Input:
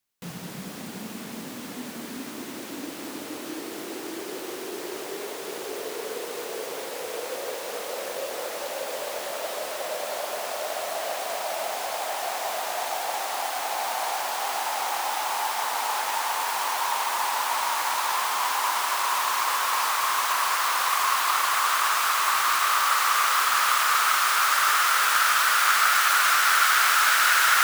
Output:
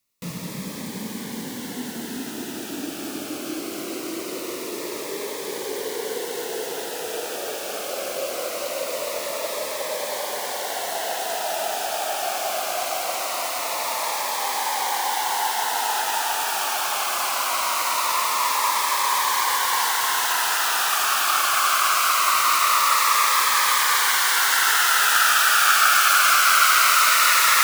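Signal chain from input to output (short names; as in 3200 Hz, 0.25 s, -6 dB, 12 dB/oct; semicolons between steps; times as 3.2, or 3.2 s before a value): cascading phaser falling 0.22 Hz; gain +5.5 dB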